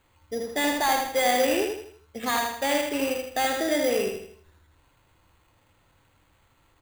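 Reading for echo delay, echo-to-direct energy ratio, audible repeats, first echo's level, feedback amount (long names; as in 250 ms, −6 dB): 80 ms, −3.0 dB, 5, −4.0 dB, 41%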